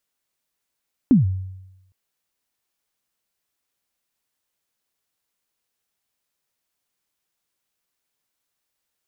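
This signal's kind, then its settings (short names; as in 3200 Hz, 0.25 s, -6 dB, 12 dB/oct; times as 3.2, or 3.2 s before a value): kick drum length 0.81 s, from 290 Hz, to 94 Hz, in 0.141 s, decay 0.95 s, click off, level -8 dB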